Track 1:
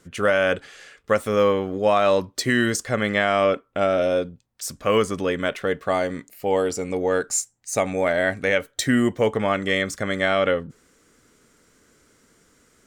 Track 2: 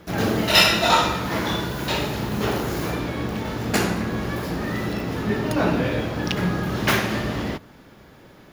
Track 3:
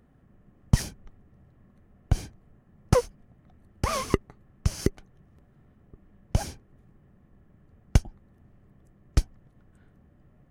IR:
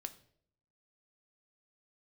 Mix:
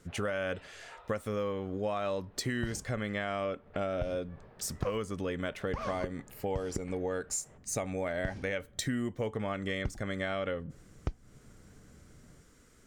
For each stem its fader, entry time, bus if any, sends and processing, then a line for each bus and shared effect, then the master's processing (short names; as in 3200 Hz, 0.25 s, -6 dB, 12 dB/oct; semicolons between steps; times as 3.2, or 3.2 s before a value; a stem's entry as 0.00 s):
-5.5 dB, 0.00 s, no bus, send -18 dB, low shelf 130 Hz +11.5 dB
-19.0 dB, 0.00 s, bus A, no send, LPF 3200 Hz; vocal rider 0.5 s; steep high-pass 380 Hz 96 dB/oct; auto duck -9 dB, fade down 0.85 s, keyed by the first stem
+1.0 dB, 1.90 s, bus A, no send, dry
bus A: 0.0 dB, tape spacing loss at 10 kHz 25 dB; limiter -11 dBFS, peak gain reduction 7 dB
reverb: on, RT60 0.65 s, pre-delay 4 ms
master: compressor 4:1, threshold -32 dBFS, peak gain reduction 13.5 dB